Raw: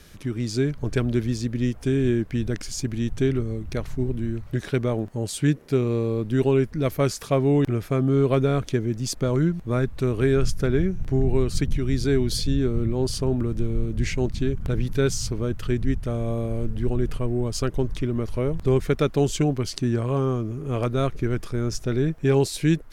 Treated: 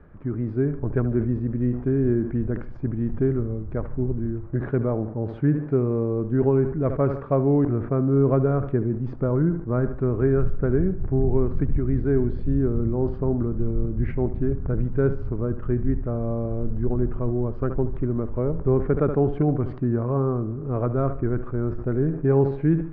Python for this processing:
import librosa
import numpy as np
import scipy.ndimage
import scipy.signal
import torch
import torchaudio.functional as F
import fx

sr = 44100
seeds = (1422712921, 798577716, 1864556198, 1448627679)

y = scipy.signal.sosfilt(scipy.signal.butter(4, 1400.0, 'lowpass', fs=sr, output='sos'), x)
y = fx.echo_feedback(y, sr, ms=73, feedback_pct=46, wet_db=-15.0)
y = fx.sustainer(y, sr, db_per_s=100.0)